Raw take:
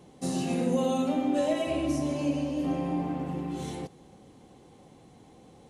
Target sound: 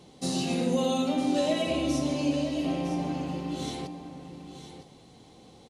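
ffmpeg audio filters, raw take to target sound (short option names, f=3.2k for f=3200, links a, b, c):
-filter_complex "[0:a]equalizer=f=4.2k:w=1.2:g=9.5,bandreject=f=1.7k:w=21,asplit=2[a][b];[b]aecho=0:1:958:0.282[c];[a][c]amix=inputs=2:normalize=0"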